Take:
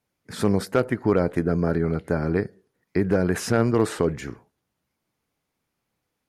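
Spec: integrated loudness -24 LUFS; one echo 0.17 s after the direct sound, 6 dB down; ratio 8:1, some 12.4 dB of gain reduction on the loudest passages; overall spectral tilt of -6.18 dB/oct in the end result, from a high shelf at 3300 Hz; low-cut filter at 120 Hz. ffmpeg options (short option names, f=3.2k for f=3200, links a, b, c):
-af "highpass=120,highshelf=f=3.3k:g=-5.5,acompressor=threshold=-29dB:ratio=8,aecho=1:1:170:0.501,volume=10.5dB"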